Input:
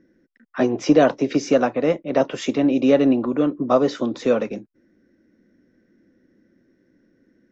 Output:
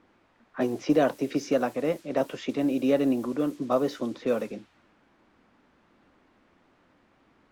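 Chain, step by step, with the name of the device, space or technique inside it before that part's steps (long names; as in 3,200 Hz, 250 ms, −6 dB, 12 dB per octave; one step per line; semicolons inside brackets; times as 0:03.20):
cassette deck with a dynamic noise filter (white noise bed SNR 25 dB; low-pass that shuts in the quiet parts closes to 1,300 Hz, open at −15.5 dBFS)
level −7.5 dB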